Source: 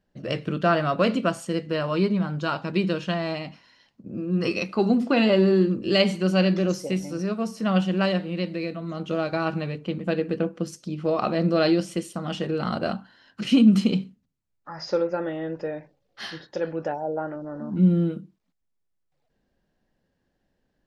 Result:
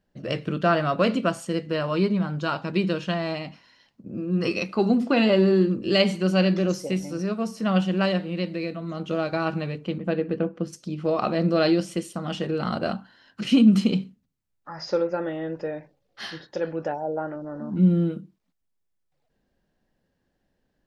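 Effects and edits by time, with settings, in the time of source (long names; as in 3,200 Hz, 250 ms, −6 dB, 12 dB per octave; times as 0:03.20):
0:09.98–0:10.73: low-pass filter 2,300 Hz 6 dB per octave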